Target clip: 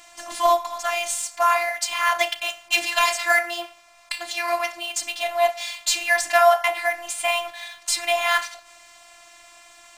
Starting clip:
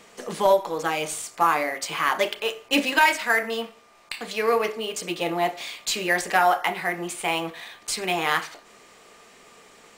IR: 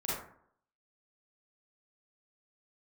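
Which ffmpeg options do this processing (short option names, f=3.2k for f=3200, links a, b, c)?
-af "afftfilt=real='re*(1-between(b*sr/4096,250,560))':imag='im*(1-between(b*sr/4096,250,560))':win_size=4096:overlap=0.75,equalizer=f=6.5k:t=o:w=1.6:g=3.5,bandreject=f=50:t=h:w=6,bandreject=f=100:t=h:w=6,bandreject=f=150:t=h:w=6,bandreject=f=200:t=h:w=6,afftfilt=real='hypot(re,im)*cos(PI*b)':imag='0':win_size=512:overlap=0.75,volume=6dB"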